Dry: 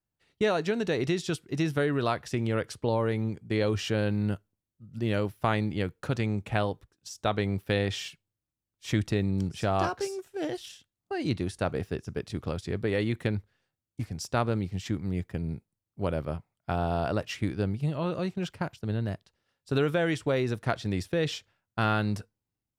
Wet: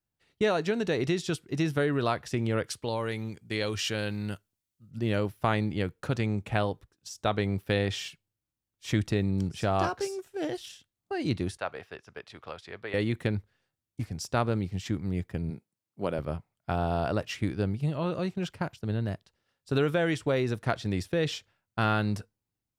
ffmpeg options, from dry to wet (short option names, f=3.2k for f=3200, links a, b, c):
-filter_complex "[0:a]asettb=1/sr,asplit=3[a][b][c];[a]atrim=end=2.664[d];[b]atrim=start=2.66:end=4.91,asetpts=PTS-STARTPTS,afade=t=in:d=0.004:c=qsin,afade=t=out:st=2.246:d=0.004:c=qsin,tiltshelf=f=1.5k:g=-6[e];[c]atrim=start=4.906[f];[d][e]acrossfade=d=0.004:c1=hsin:c2=qsin[g];[g][f]acrossfade=d=0.004:c1=qsin:c2=hsin,asettb=1/sr,asplit=3[h][i][j];[h]atrim=end=11.574[k];[i]atrim=start=11.57:end=12.94,asetpts=PTS-STARTPTS,afade=t=in:d=0.004:c=qsin,afade=t=out:st=1.366:d=0.004:c=qsin,acrossover=split=580 4200:gain=0.112 1 0.224[l][m][n];[l][m][n]amix=inputs=3:normalize=0[o];[j]atrim=start=12.936[p];[k][o]acrossfade=d=0.004:c1=hsin:c2=qsin[q];[q][p]acrossfade=d=0.004:c1=qsin:c2=hsin,asettb=1/sr,asplit=3[r][s][t];[r]atrim=end=15.504[u];[s]atrim=start=15.5:end=16.19,asetpts=PTS-STARTPTS,afade=t=in:d=0.004:c=qsin,afade=t=out:st=0.686:d=0.004:c=qsin,highpass=170[v];[t]atrim=start=16.186[w];[u][v]acrossfade=d=0.004:c1=hsin:c2=qsin[x];[x][w]acrossfade=d=0.004:c1=qsin:c2=hsin"